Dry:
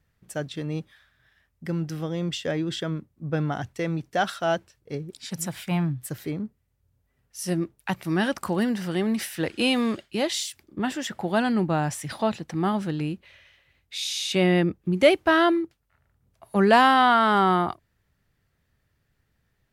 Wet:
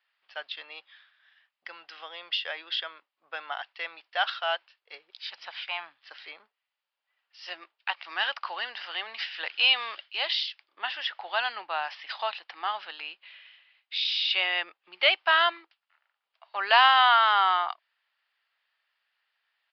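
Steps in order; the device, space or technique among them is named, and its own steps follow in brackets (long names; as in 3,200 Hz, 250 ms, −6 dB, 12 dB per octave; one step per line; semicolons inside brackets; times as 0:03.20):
musical greeting card (downsampling to 11,025 Hz; high-pass filter 820 Hz 24 dB per octave; parametric band 2,900 Hz +7 dB 0.54 octaves)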